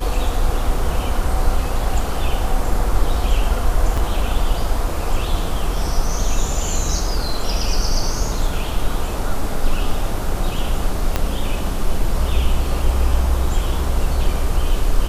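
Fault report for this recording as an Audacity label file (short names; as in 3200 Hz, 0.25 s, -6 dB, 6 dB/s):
3.970000	3.980000	gap 5.3 ms
11.160000	11.160000	pop -4 dBFS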